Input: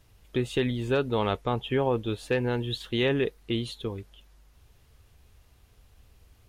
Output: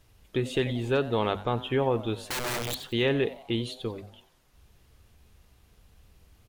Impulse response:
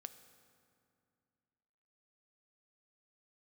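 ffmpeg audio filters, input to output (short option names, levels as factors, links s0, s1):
-filter_complex "[0:a]asettb=1/sr,asplit=3[s0][s1][s2];[s0]atrim=end=2.274[s3];[s1]atrim=start=2.27:end=2.8,asetpts=PTS-STARTPTS,afade=t=in:d=0.004:c=qsin,afade=t=out:st=0.526:d=0.004:c=qsin,aeval=exprs='(mod(20*val(0)+1,2)-1)/20':c=same[s4];[s2]atrim=start=2.796[s5];[s3][s4]acrossfade=d=0.004:c1=hsin:c2=qsin[s6];[s6][s5]acrossfade=d=0.004:c1=qsin:c2=hsin,bandreject=f=50:t=h:w=6,bandreject=f=100:t=h:w=6,bandreject=f=150:t=h:w=6,bandreject=f=200:t=h:w=6,bandreject=f=250:t=h:w=6,asplit=5[s7][s8][s9][s10][s11];[s8]adelay=91,afreqshift=140,volume=0.133[s12];[s9]adelay=182,afreqshift=280,volume=0.0575[s13];[s10]adelay=273,afreqshift=420,volume=0.0245[s14];[s11]adelay=364,afreqshift=560,volume=0.0106[s15];[s7][s12][s13][s14][s15]amix=inputs=5:normalize=0"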